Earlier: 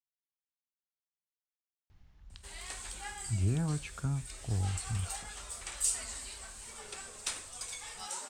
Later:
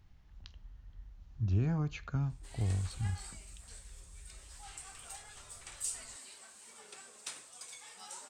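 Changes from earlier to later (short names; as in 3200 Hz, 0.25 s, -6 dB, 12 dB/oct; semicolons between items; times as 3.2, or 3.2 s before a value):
speech: entry -1.90 s; background -7.0 dB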